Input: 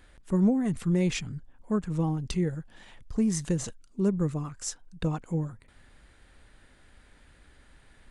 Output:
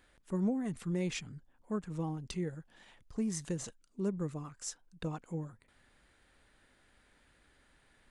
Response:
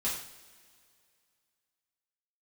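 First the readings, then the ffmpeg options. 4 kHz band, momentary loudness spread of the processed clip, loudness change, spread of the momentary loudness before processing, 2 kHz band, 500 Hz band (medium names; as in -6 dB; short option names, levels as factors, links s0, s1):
-6.5 dB, 10 LU, -8.5 dB, 11 LU, -6.5 dB, -7.5 dB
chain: -af "lowshelf=f=130:g=-9,volume=0.473"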